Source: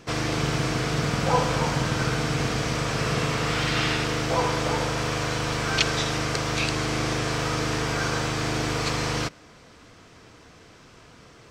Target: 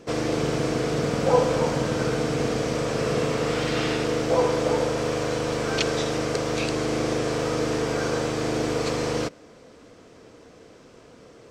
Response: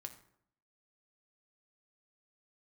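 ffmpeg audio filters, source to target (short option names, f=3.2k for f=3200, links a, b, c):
-af "equalizer=f=250:t=o:w=1:g=6,equalizer=f=500:t=o:w=1:g=11,equalizer=f=8k:t=o:w=1:g=3,volume=-5dB"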